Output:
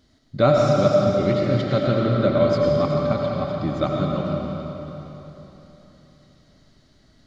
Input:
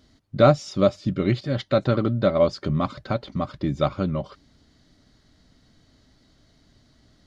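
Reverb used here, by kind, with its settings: algorithmic reverb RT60 3.6 s, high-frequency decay 0.85×, pre-delay 55 ms, DRR -2 dB; trim -2 dB

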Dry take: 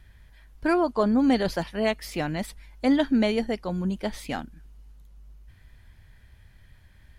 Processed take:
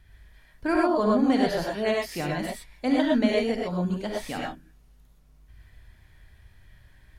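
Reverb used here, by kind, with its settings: gated-style reverb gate 140 ms rising, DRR -2.5 dB; trim -3.5 dB

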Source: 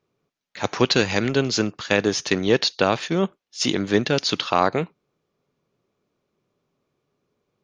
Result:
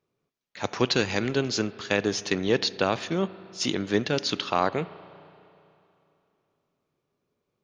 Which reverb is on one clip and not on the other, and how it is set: spring tank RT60 2.8 s, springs 32/39 ms, chirp 60 ms, DRR 16 dB; trim -5 dB

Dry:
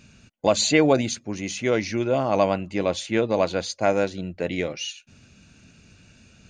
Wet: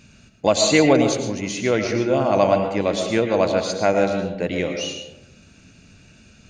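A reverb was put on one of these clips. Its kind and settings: algorithmic reverb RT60 1 s, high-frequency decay 0.35×, pre-delay 70 ms, DRR 5 dB; trim +2 dB

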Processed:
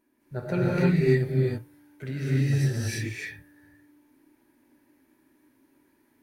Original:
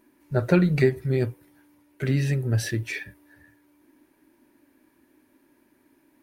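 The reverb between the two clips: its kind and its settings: gated-style reverb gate 350 ms rising, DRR -7.5 dB; trim -10.5 dB

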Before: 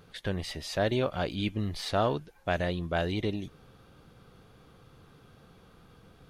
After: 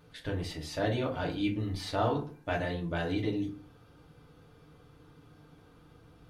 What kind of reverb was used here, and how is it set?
FDN reverb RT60 0.42 s, low-frequency decay 1.3×, high-frequency decay 0.55×, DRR -2 dB; trim -6.5 dB

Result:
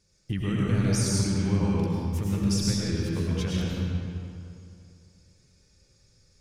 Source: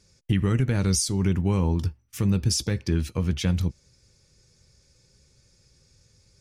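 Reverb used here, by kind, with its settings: algorithmic reverb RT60 2.5 s, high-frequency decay 0.7×, pre-delay 65 ms, DRR -5.5 dB; trim -7.5 dB

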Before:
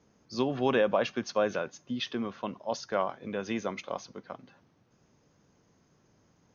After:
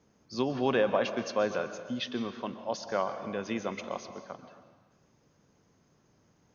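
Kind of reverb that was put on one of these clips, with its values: plate-style reverb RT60 1.4 s, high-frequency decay 0.85×, pre-delay 110 ms, DRR 9.5 dB; trim -1 dB

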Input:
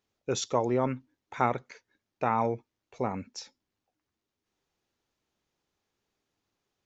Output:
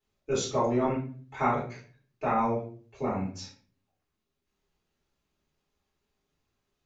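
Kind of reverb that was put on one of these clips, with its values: simulated room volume 35 m³, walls mixed, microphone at 2.7 m; trim -12.5 dB

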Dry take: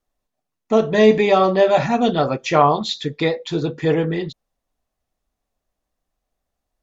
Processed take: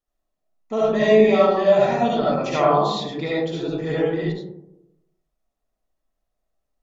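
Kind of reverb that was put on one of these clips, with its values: algorithmic reverb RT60 0.87 s, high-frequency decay 0.3×, pre-delay 30 ms, DRR -6 dB; trim -10 dB

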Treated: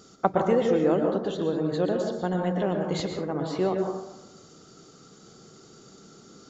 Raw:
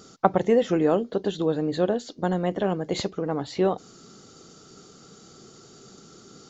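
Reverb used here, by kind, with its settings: plate-style reverb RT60 0.95 s, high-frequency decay 0.3×, pre-delay 105 ms, DRR 2.5 dB; trim -3.5 dB

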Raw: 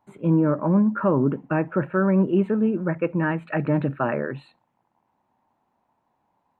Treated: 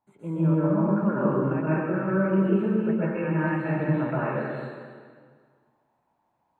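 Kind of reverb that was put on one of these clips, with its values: plate-style reverb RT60 1.8 s, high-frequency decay 0.9×, pre-delay 110 ms, DRR -9.5 dB; trim -12 dB

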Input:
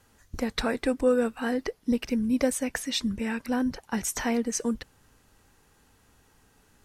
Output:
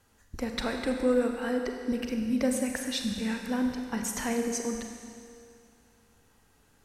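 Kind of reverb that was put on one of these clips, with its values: Schroeder reverb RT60 2.3 s, combs from 32 ms, DRR 3.5 dB; trim -4 dB

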